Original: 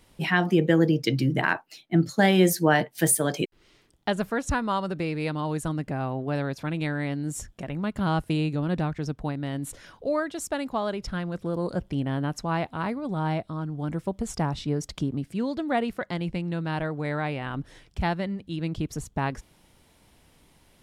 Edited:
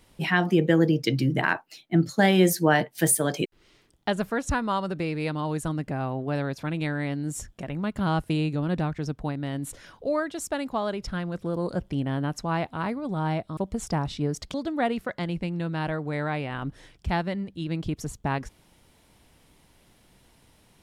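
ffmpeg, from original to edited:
ffmpeg -i in.wav -filter_complex "[0:a]asplit=3[link_01][link_02][link_03];[link_01]atrim=end=13.572[link_04];[link_02]atrim=start=14.038:end=15.012[link_05];[link_03]atrim=start=15.458[link_06];[link_04][link_05]acrossfade=duration=0.004:curve1=hsin:curve2=hsin[link_07];[link_07][link_06]acrossfade=duration=0.004:curve1=hsin:curve2=hsin" out.wav

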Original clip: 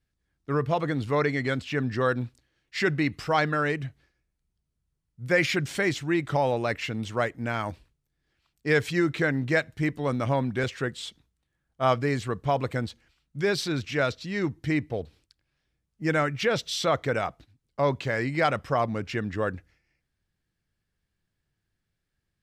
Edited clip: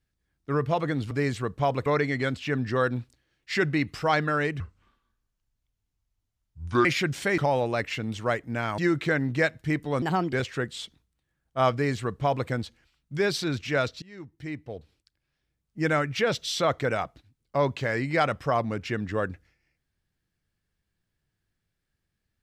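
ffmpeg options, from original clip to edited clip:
ffmpeg -i in.wav -filter_complex "[0:a]asplit=10[link_01][link_02][link_03][link_04][link_05][link_06][link_07][link_08][link_09][link_10];[link_01]atrim=end=1.112[link_11];[link_02]atrim=start=11.968:end=12.722[link_12];[link_03]atrim=start=1.108:end=3.854[link_13];[link_04]atrim=start=3.85:end=5.38,asetpts=PTS-STARTPTS,asetrate=29988,aresample=44100[link_14];[link_05]atrim=start=5.376:end=5.912[link_15];[link_06]atrim=start=6.288:end=7.692[link_16];[link_07]atrim=start=8.908:end=10.154[link_17];[link_08]atrim=start=10.15:end=10.57,asetpts=PTS-STARTPTS,asetrate=59535,aresample=44100[link_18];[link_09]atrim=start=10.566:end=14.26,asetpts=PTS-STARTPTS,afade=type=out:start_time=3.69:duration=0.004:curve=hsin:silence=0.0891251[link_19];[link_10]atrim=start=14.26,asetpts=PTS-STARTPTS,afade=type=in:duration=1.8:silence=0.0891251[link_20];[link_11][link_12]acrossfade=duration=0.004:curve1=hsin:curve2=hsin[link_21];[link_21][link_13]acrossfade=duration=0.004:curve1=hsin:curve2=hsin[link_22];[link_22][link_14]acrossfade=duration=0.004:curve1=hsin:curve2=hsin[link_23];[link_23][link_15]acrossfade=duration=0.004:curve1=hsin:curve2=hsin[link_24];[link_24][link_16]acrossfade=duration=0.004:curve1=hsin:curve2=hsin[link_25];[link_25][link_17]acrossfade=duration=0.004:curve1=hsin:curve2=hsin[link_26];[link_26][link_18]acrossfade=duration=0.004:curve1=hsin:curve2=hsin[link_27];[link_19][link_20]concat=n=2:v=0:a=1[link_28];[link_27][link_28]acrossfade=duration=0.004:curve1=hsin:curve2=hsin" out.wav

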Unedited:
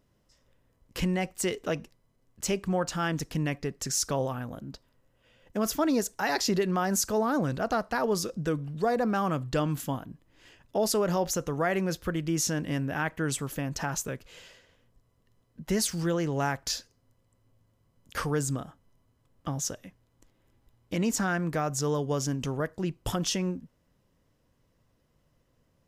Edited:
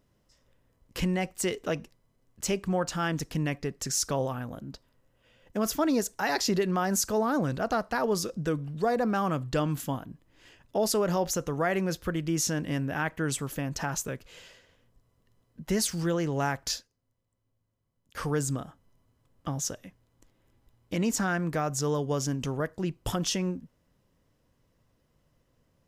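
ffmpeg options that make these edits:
ffmpeg -i in.wav -filter_complex "[0:a]asplit=3[link_01][link_02][link_03];[link_01]atrim=end=16.89,asetpts=PTS-STARTPTS,afade=type=out:start_time=16.73:duration=0.16:curve=qua:silence=0.266073[link_04];[link_02]atrim=start=16.89:end=18.09,asetpts=PTS-STARTPTS,volume=-11.5dB[link_05];[link_03]atrim=start=18.09,asetpts=PTS-STARTPTS,afade=type=in:duration=0.16:curve=qua:silence=0.266073[link_06];[link_04][link_05][link_06]concat=n=3:v=0:a=1" out.wav

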